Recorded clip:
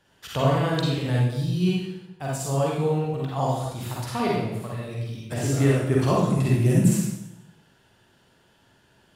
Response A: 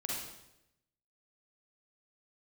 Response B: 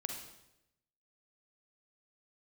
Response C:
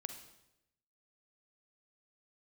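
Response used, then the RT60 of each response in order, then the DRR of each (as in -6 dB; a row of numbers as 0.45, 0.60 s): A; 0.85, 0.85, 0.85 s; -4.5, 2.5, 7.0 dB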